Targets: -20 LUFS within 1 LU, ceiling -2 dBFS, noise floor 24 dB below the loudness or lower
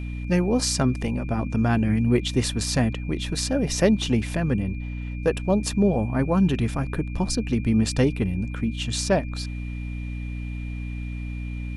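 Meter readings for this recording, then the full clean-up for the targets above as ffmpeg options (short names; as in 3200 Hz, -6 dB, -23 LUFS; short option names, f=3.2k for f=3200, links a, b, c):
hum 60 Hz; harmonics up to 300 Hz; hum level -28 dBFS; steady tone 2400 Hz; tone level -44 dBFS; loudness -24.5 LUFS; peak -7.0 dBFS; loudness target -20.0 LUFS
-> -af "bandreject=f=60:t=h:w=6,bandreject=f=120:t=h:w=6,bandreject=f=180:t=h:w=6,bandreject=f=240:t=h:w=6,bandreject=f=300:t=h:w=6"
-af "bandreject=f=2.4k:w=30"
-af "volume=4.5dB"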